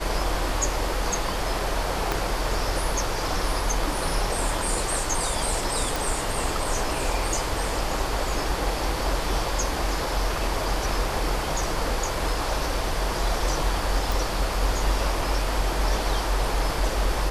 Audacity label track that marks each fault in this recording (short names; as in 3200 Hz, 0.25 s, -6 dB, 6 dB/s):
2.120000	2.120000	pop
5.960000	5.960000	pop
14.120000	14.120000	pop